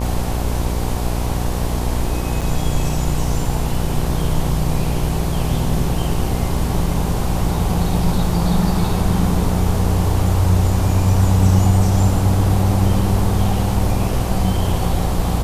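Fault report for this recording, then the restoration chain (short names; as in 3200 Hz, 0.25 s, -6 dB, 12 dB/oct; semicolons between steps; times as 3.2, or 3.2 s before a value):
buzz 60 Hz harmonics 19 -22 dBFS
2.41–2.42 gap 6.6 ms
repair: de-hum 60 Hz, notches 19; interpolate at 2.41, 6.6 ms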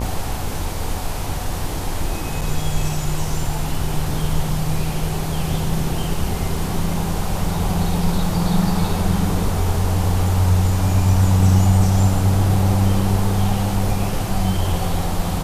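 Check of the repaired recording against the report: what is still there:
none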